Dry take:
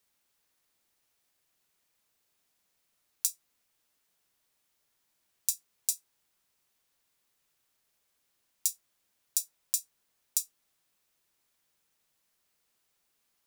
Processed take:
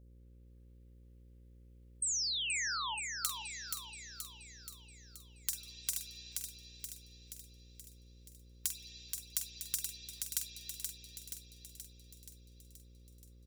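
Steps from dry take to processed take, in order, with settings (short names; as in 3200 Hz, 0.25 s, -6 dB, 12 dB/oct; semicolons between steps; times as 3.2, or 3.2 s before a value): spring tank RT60 1.3 s, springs 48/53 ms, chirp 55 ms, DRR -7.5 dB; painted sound fall, 2.02–2.95, 820–8600 Hz -31 dBFS; wrapped overs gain 12.5 dB; compressor 3:1, threshold -45 dBFS, peak gain reduction 15.5 dB; high shelf 2500 Hz +8 dB; gate -58 dBFS, range -21 dB; spectral gate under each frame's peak -25 dB strong; doubler 46 ms -9 dB; on a send: thinning echo 0.477 s, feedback 59%, high-pass 1100 Hz, level -4.5 dB; on the sum: buzz 60 Hz, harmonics 9, -58 dBFS -8 dB/oct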